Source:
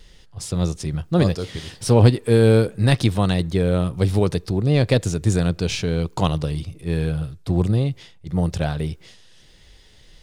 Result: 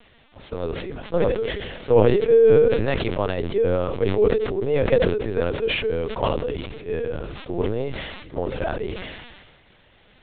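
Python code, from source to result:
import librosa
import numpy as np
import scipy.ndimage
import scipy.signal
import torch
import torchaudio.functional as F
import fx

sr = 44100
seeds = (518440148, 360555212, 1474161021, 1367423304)

p1 = scipy.signal.sosfilt(scipy.signal.butter(4, 3000.0, 'lowpass', fs=sr, output='sos'), x)
p2 = fx.low_shelf_res(p1, sr, hz=310.0, db=-9.5, q=3.0)
p3 = fx.quant_dither(p2, sr, seeds[0], bits=6, dither='triangular')
p4 = p2 + (p3 * librosa.db_to_amplitude(-12.0))
p5 = fx.lpc_vocoder(p4, sr, seeds[1], excitation='pitch_kept', order=10)
p6 = fx.sustainer(p5, sr, db_per_s=38.0)
y = p6 * librosa.db_to_amplitude(-4.5)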